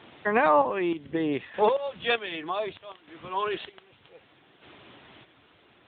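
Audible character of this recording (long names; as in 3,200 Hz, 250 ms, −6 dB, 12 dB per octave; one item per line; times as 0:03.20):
a quantiser's noise floor 8 bits, dither triangular
chopped level 0.65 Hz, depth 60%, duty 40%
AMR narrowband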